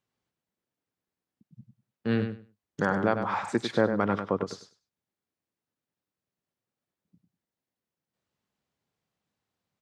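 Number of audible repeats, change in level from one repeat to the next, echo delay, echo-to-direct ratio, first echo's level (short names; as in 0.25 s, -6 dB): 2, -15.0 dB, 99 ms, -8.0 dB, -8.0 dB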